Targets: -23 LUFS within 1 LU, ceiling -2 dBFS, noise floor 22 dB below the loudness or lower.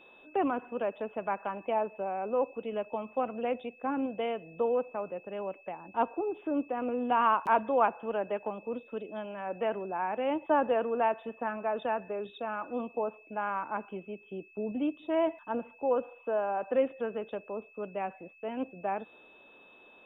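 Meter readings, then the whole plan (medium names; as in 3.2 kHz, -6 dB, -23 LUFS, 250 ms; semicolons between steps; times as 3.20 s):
steady tone 2.6 kHz; tone level -56 dBFS; loudness -32.5 LUFS; peak level -13.5 dBFS; loudness target -23.0 LUFS
-> band-stop 2.6 kHz, Q 30; trim +9.5 dB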